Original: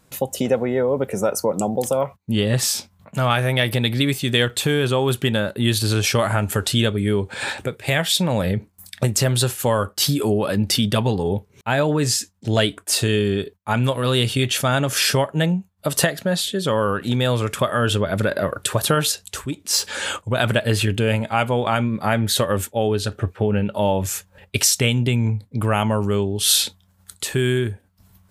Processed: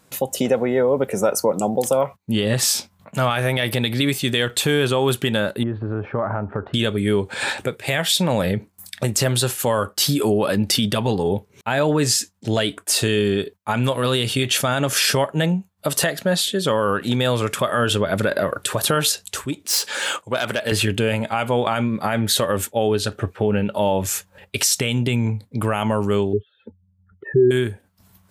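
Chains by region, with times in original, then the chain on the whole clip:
5.63–6.74 s: low-pass 1.3 kHz 24 dB/octave + compression 2.5:1, threshold -21 dBFS
19.65–20.72 s: self-modulated delay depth 0.055 ms + high-pass 330 Hz 6 dB/octave
26.33–27.51 s: spectral contrast enhancement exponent 2.5 + steep low-pass 1.8 kHz 48 dB/octave + peaking EQ 360 Hz +10.5 dB 1.6 oct
whole clip: bass shelf 87 Hz -12 dB; peak limiter -10.5 dBFS; trim +2.5 dB

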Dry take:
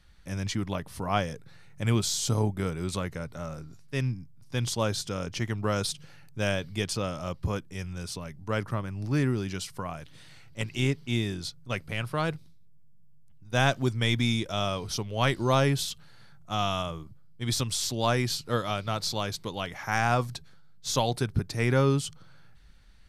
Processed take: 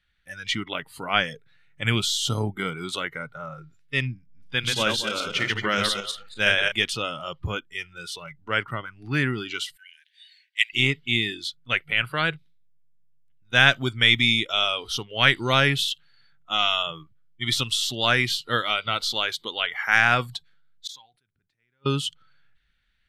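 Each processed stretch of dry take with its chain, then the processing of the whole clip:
4.18–6.72 s: backward echo that repeats 114 ms, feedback 45%, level -3 dB + hum notches 60/120/180/240/300 Hz
9.76–10.73 s: transient shaper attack +4 dB, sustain -2 dB + brick-wall FIR high-pass 1.5 kHz
20.87–21.86 s: inverted gate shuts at -27 dBFS, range -36 dB + decay stretcher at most 53 dB/s
whole clip: spectral noise reduction 17 dB; high-order bell 2.3 kHz +12.5 dB

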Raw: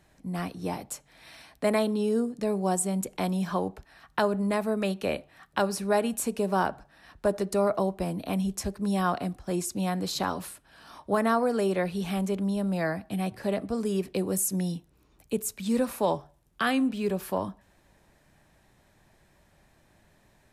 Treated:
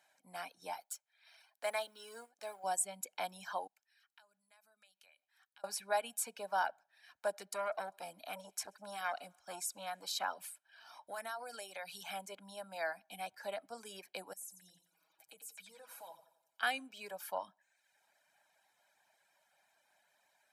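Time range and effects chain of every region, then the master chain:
0.80–2.64 s: companding laws mixed up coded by A + peaking EQ 140 Hz -13.5 dB 1.9 oct
3.67–5.64 s: amplifier tone stack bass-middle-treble 5-5-5 + compression 12:1, threshold -54 dBFS
7.50–10.23 s: thinning echo 66 ms, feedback 82%, high-pass 470 Hz, level -22 dB + transformer saturation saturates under 710 Hz
11.07–12.03 s: treble shelf 3.2 kHz +9 dB + compression 8:1, threshold -28 dBFS
14.33–16.63 s: comb 6.2 ms, depth 75% + compression 3:1, threshold -45 dBFS + feedback delay 88 ms, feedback 56%, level -6 dB
whole clip: high-pass 730 Hz 12 dB/octave; reverb removal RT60 0.82 s; comb 1.3 ms, depth 55%; trim -6.5 dB

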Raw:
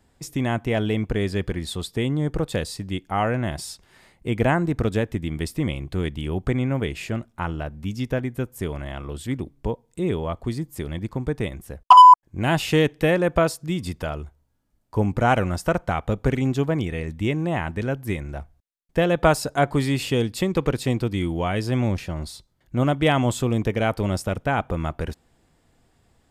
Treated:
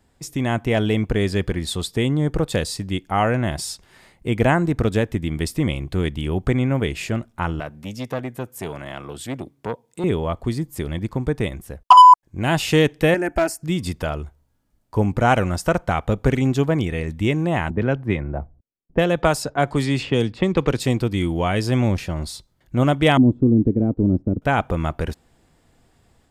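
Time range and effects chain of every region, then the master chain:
7.60–10.04 s: high-pass 89 Hz 24 dB/octave + bass shelf 250 Hz -6.5 dB + transformer saturation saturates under 910 Hz
13.14–13.63 s: static phaser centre 740 Hz, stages 8 + hard clipper -16.5 dBFS
17.70–20.80 s: level-controlled noise filter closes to 310 Hz, open at -16 dBFS + three bands compressed up and down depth 40%
23.17–24.42 s: companding laws mixed up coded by A + resonant low-pass 290 Hz, resonance Q 3
whole clip: dynamic bell 6.6 kHz, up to +3 dB, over -41 dBFS, Q 0.84; level rider gain up to 3.5 dB

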